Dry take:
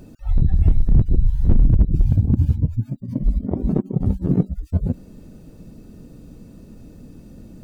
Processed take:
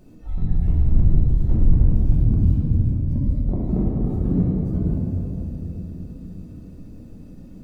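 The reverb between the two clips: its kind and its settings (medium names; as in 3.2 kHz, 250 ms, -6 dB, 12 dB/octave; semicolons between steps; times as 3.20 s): simulated room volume 210 m³, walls hard, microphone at 0.96 m; trim -9.5 dB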